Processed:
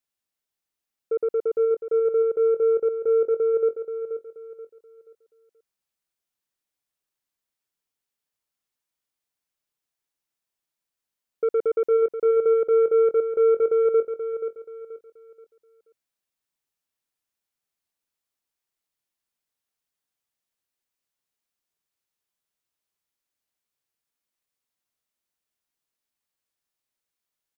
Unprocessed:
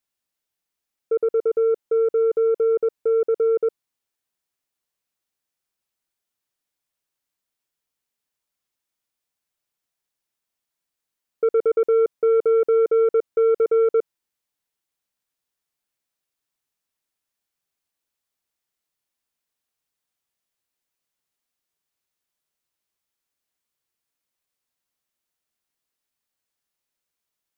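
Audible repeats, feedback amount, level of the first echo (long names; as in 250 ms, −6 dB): 3, 32%, −9.0 dB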